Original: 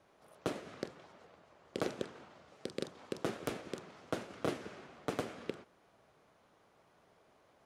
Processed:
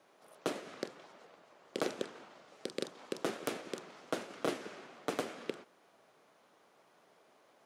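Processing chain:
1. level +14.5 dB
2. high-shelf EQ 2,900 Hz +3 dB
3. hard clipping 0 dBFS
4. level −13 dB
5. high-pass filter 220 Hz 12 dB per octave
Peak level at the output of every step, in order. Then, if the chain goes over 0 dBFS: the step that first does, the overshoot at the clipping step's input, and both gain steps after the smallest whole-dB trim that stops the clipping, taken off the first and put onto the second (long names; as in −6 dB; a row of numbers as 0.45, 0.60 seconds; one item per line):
−7.0, −5.5, −5.5, −18.5, −18.0 dBFS
no step passes full scale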